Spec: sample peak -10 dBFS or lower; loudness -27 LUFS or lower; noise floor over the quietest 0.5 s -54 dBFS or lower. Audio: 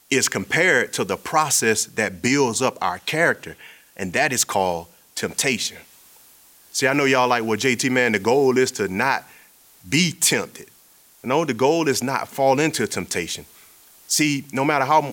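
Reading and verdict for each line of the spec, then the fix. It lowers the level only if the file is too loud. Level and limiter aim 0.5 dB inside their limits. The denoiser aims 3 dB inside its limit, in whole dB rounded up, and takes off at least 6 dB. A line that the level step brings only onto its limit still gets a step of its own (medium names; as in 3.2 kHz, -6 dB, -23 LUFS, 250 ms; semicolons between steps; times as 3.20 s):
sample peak -4.5 dBFS: fail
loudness -20.0 LUFS: fail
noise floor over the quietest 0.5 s -53 dBFS: fail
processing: trim -7.5 dB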